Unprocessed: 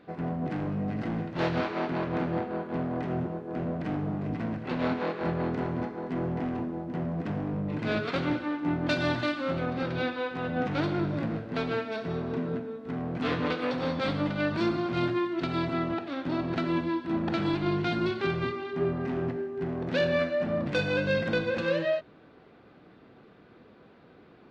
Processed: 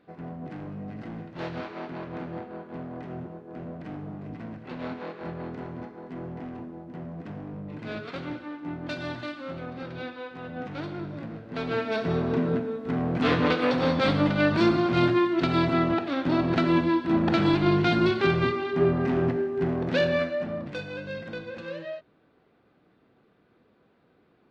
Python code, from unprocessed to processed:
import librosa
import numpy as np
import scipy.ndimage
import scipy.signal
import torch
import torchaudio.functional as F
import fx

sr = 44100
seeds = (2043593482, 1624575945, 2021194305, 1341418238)

y = fx.gain(x, sr, db=fx.line((11.38, -6.5), (11.92, 6.0), (19.65, 6.0), (20.38, -1.0), (20.88, -9.0)))